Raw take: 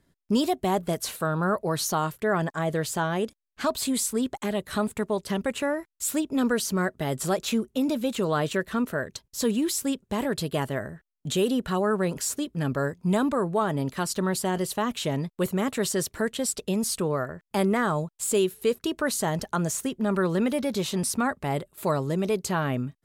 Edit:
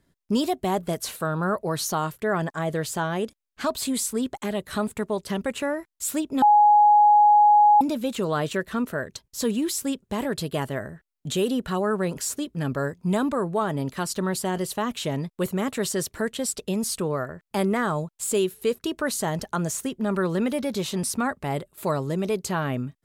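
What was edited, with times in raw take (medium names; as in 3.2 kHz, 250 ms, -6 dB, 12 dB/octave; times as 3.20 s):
6.42–7.81 s: bleep 834 Hz -12 dBFS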